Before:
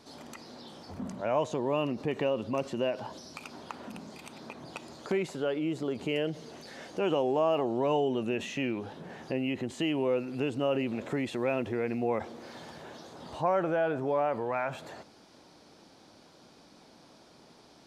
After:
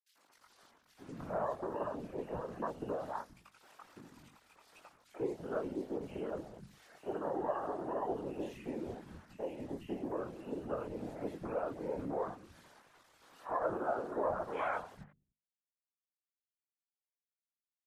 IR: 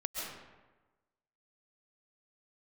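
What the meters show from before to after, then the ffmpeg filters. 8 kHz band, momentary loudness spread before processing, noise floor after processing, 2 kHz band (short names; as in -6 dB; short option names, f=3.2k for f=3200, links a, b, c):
under -10 dB, 18 LU, under -85 dBFS, -10.5 dB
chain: -filter_complex "[0:a]tremolo=f=1.9:d=0.28,asplit=2[a][b];[1:a]atrim=start_sample=2205,asetrate=83790,aresample=44100[c];[b][c]afir=irnorm=-1:irlink=0,volume=-15.5dB[d];[a][d]amix=inputs=2:normalize=0,acrusher=bits=6:mix=0:aa=0.000001,afwtdn=0.02,acompressor=threshold=-33dB:ratio=8,equalizer=f=1.4k:w=0.63:g=9,asplit=2[e][f];[f]adelay=21,volume=-3dB[g];[e][g]amix=inputs=2:normalize=0,acrossover=split=190|2200[h][i][j];[i]adelay=90[k];[h]adelay=290[l];[l][k][j]amix=inputs=3:normalize=0,afftfilt=real='hypot(re,im)*cos(2*PI*random(0))':imag='hypot(re,im)*sin(2*PI*random(1))':win_size=512:overlap=0.75,bandreject=f=50:t=h:w=6,bandreject=f=100:t=h:w=6,bandreject=f=150:t=h:w=6,bandreject=f=200:t=h:w=6,bandreject=f=250:t=h:w=6,volume=1.5dB" -ar 48000 -c:a libmp3lame -b:a 56k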